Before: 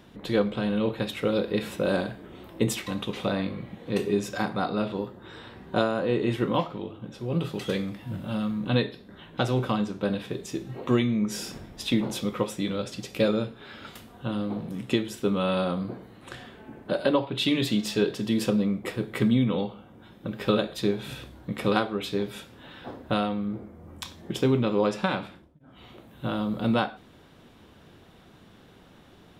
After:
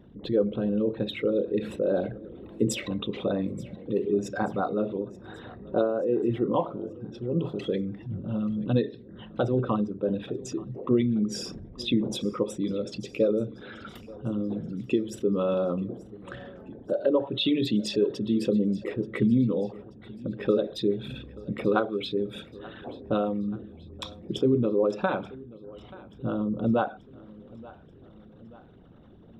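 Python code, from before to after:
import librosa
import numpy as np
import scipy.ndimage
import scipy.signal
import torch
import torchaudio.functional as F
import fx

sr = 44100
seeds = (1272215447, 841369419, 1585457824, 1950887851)

p1 = fx.envelope_sharpen(x, sr, power=2.0)
y = p1 + fx.echo_feedback(p1, sr, ms=882, feedback_pct=52, wet_db=-21, dry=0)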